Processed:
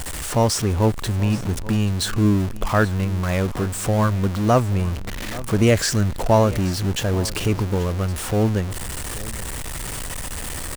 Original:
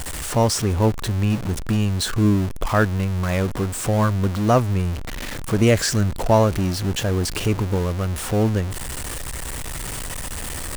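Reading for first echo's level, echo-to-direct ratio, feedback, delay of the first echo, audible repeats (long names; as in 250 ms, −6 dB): −18.0 dB, −18.0 dB, repeats not evenly spaced, 831 ms, 1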